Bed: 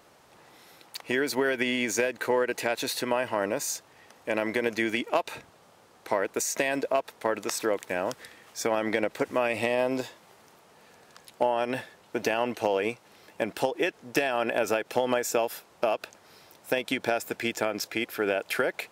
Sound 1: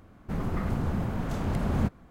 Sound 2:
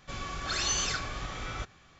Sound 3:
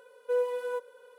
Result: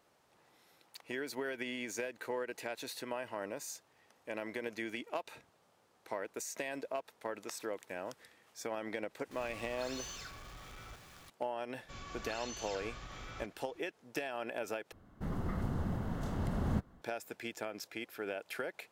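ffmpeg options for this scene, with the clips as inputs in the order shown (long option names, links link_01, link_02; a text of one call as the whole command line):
ffmpeg -i bed.wav -i cue0.wav -i cue1.wav -filter_complex "[2:a]asplit=2[link_01][link_02];[0:a]volume=-13dB[link_03];[link_01]aeval=exprs='val(0)+0.5*0.0211*sgn(val(0))':channel_layout=same[link_04];[link_02]alimiter=level_in=4.5dB:limit=-24dB:level=0:latency=1:release=77,volume=-4.5dB[link_05];[1:a]bandreject=frequency=2400:width=6.3[link_06];[link_03]asplit=2[link_07][link_08];[link_07]atrim=end=14.924[link_09];[link_06]atrim=end=2.1,asetpts=PTS-STARTPTS,volume=-7dB[link_10];[link_08]atrim=start=17.016[link_11];[link_04]atrim=end=1.99,asetpts=PTS-STARTPTS,volume=-18dB,afade=type=in:duration=0.004:curve=hsin,afade=type=out:start_time=1.986:duration=0.004:curve=hsin,adelay=9310[link_12];[link_05]atrim=end=1.99,asetpts=PTS-STARTPTS,volume=-9dB,afade=type=in:duration=0.004:curve=hsin,afade=type=out:start_time=1.986:duration=0.004:curve=hsin,adelay=11810[link_13];[link_09][link_10]acrossfade=duration=0.004:curve1=hsin:curve2=hsin[link_14];[link_14][link_11]acrossfade=duration=0.004:curve1=hsin:curve2=hsin[link_15];[link_15][link_12][link_13]amix=inputs=3:normalize=0" out.wav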